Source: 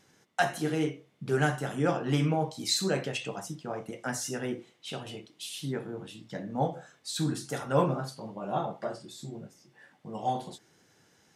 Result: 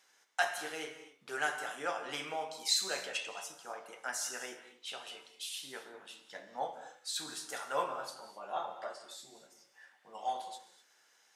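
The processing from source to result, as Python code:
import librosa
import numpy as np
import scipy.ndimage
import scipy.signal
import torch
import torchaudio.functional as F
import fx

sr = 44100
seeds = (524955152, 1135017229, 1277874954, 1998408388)

y = scipy.signal.sosfilt(scipy.signal.butter(2, 830.0, 'highpass', fs=sr, output='sos'), x)
y = fx.rev_gated(y, sr, seeds[0], gate_ms=280, shape='flat', drr_db=9.0)
y = F.gain(torch.from_numpy(y), -2.0).numpy()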